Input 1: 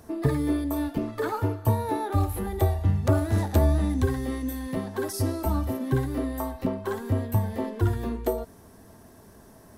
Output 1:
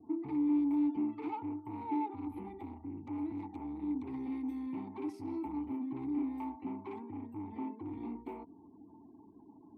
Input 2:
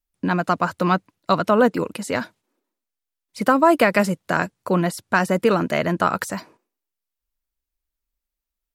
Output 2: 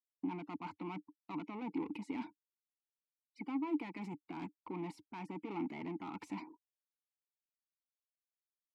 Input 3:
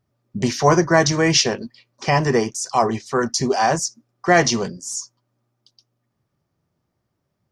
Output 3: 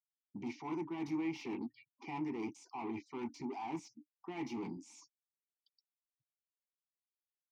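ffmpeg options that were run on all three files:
-filter_complex "[0:a]adynamicequalizer=threshold=0.0158:dfrequency=1600:dqfactor=4.4:tfrequency=1600:tqfactor=4.4:attack=5:release=100:ratio=0.375:range=2.5:mode=boostabove:tftype=bell,areverse,acompressor=threshold=0.0631:ratio=20,areverse,afftfilt=real='re*gte(hypot(re,im),0.00398)':imag='im*gte(hypot(re,im),0.00398)':win_size=1024:overlap=0.75,equalizer=f=94:w=1.6:g=4,asoftclip=type=tanh:threshold=0.0299,asplit=3[s0][s1][s2];[s0]bandpass=f=300:t=q:w=8,volume=1[s3];[s1]bandpass=f=870:t=q:w=8,volume=0.501[s4];[s2]bandpass=f=2240:t=q:w=8,volume=0.355[s5];[s3][s4][s5]amix=inputs=3:normalize=0,volume=2"

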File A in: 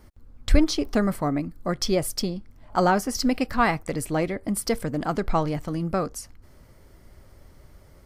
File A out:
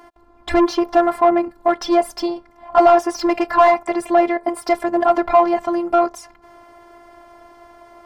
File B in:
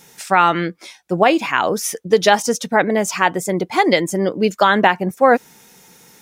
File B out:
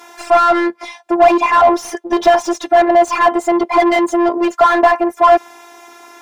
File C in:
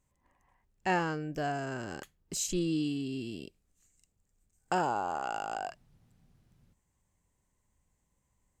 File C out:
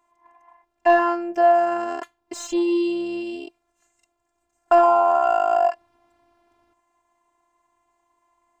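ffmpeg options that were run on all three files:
-filter_complex "[0:a]afftfilt=real='hypot(re,im)*cos(PI*b)':imag='0':win_size=512:overlap=0.75,asplit=2[s0][s1];[s1]highpass=f=720:p=1,volume=31.6,asoftclip=type=tanh:threshold=0.944[s2];[s0][s2]amix=inputs=2:normalize=0,lowpass=f=1300:p=1,volume=0.501,equalizer=f=850:t=o:w=0.9:g=11,volume=0.531"

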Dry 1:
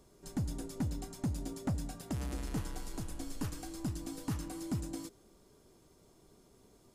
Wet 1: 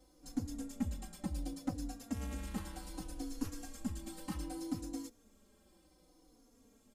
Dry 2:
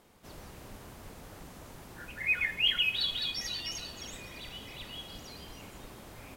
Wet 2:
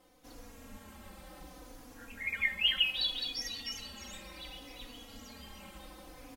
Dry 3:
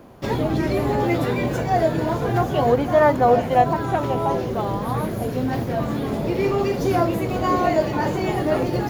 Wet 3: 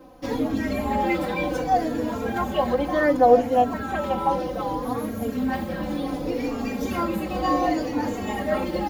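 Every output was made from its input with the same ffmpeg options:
-filter_complex "[0:a]aecho=1:1:3.8:0.97,asplit=2[s0][s1];[s1]adelay=3.5,afreqshift=-0.66[s2];[s0][s2]amix=inputs=2:normalize=1,volume=0.75"

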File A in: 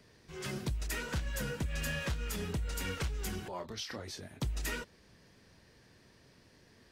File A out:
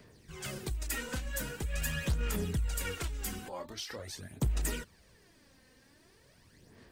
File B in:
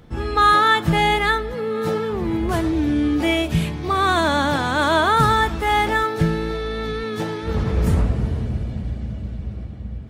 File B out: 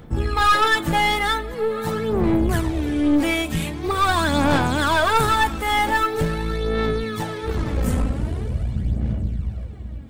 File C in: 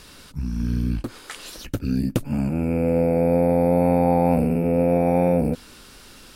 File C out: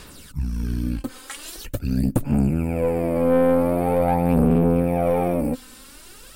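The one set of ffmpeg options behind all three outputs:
-af "aexciter=amount=2.3:drive=3.3:freq=7400,aphaser=in_gain=1:out_gain=1:delay=3.9:decay=0.55:speed=0.44:type=sinusoidal,aeval=exprs='(tanh(3.55*val(0)+0.45)-tanh(0.45))/3.55':c=same"

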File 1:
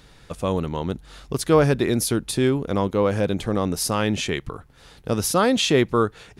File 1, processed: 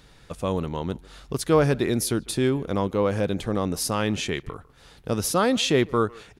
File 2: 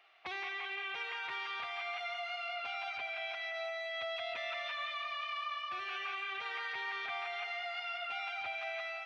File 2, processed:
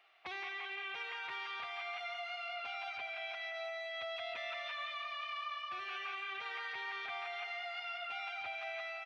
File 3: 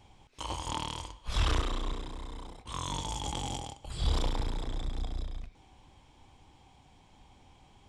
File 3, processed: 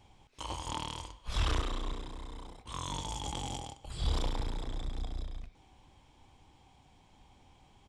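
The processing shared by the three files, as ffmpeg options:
-filter_complex "[0:a]asplit=2[s0][s1];[s1]adelay=150,highpass=300,lowpass=3400,asoftclip=type=hard:threshold=0.2,volume=0.0794[s2];[s0][s2]amix=inputs=2:normalize=0,volume=0.75"

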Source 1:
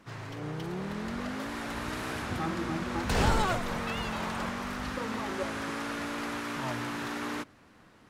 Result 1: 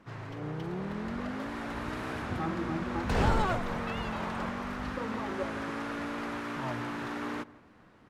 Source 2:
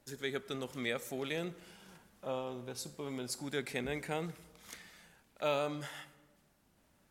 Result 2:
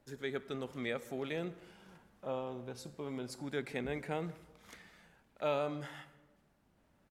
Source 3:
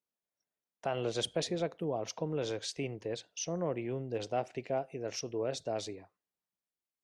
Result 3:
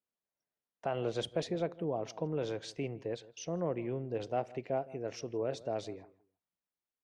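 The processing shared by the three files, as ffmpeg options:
-filter_complex "[0:a]highshelf=f=3600:g=-11.5,asplit=2[s0][s1];[s1]adelay=161,lowpass=f=1500:p=1,volume=0.112,asplit=2[s2][s3];[s3]adelay=161,lowpass=f=1500:p=1,volume=0.23[s4];[s2][s4]amix=inputs=2:normalize=0[s5];[s0][s5]amix=inputs=2:normalize=0"

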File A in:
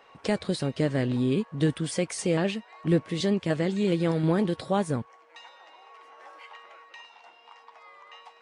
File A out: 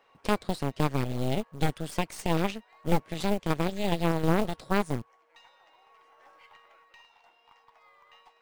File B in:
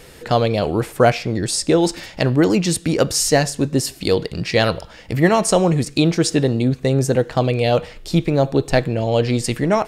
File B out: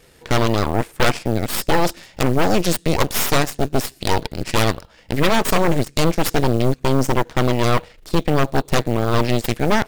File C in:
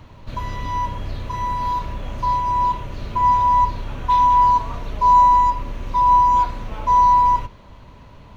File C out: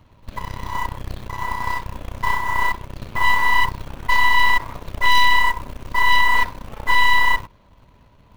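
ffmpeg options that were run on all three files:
-af "acrusher=bits=7:mode=log:mix=0:aa=0.000001,aeval=exprs='0.944*(cos(1*acos(clip(val(0)/0.944,-1,1)))-cos(1*PI/2))+0.106*(cos(3*acos(clip(val(0)/0.944,-1,1)))-cos(3*PI/2))+0.119*(cos(6*acos(clip(val(0)/0.944,-1,1)))-cos(6*PI/2))+0.422*(cos(8*acos(clip(val(0)/0.944,-1,1)))-cos(8*PI/2))':c=same,volume=0.562"

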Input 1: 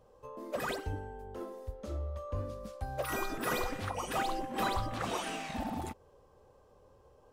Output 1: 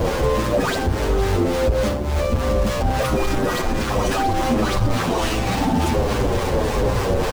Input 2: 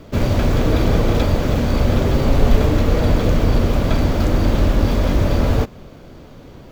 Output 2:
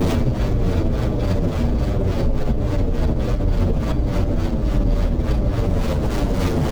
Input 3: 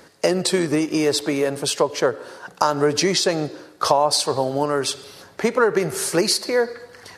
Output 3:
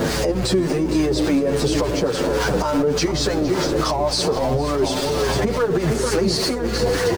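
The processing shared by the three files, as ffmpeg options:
-filter_complex "[0:a]aeval=exprs='val(0)+0.5*0.0944*sgn(val(0))':c=same,acrossover=split=7500[s0][s1];[s1]acompressor=threshold=0.00794:ratio=4:attack=1:release=60[s2];[s0][s2]amix=inputs=2:normalize=0,highshelf=f=5400:g=5.5,aecho=1:1:460|920|1380|1840|2300|2760:0.335|0.167|0.0837|0.0419|0.0209|0.0105,acrossover=split=890[s3][s4];[s3]aeval=exprs='val(0)*(1-0.5/2+0.5/2*cos(2*PI*3.5*n/s))':c=same[s5];[s4]aeval=exprs='val(0)*(1-0.5/2-0.5/2*cos(2*PI*3.5*n/s))':c=same[s6];[s5][s6]amix=inputs=2:normalize=0,tiltshelf=f=850:g=5.5,acompressor=threshold=0.1:ratio=10,aeval=exprs='val(0)+0.02*(sin(2*PI*60*n/s)+sin(2*PI*2*60*n/s)/2+sin(2*PI*3*60*n/s)/3+sin(2*PI*4*60*n/s)/4+sin(2*PI*5*60*n/s)/5)':c=same,alimiter=level_in=7.08:limit=0.891:release=50:level=0:latency=1,asplit=2[s7][s8];[s8]adelay=8.5,afreqshift=-1.4[s9];[s7][s9]amix=inputs=2:normalize=1,volume=0.422"

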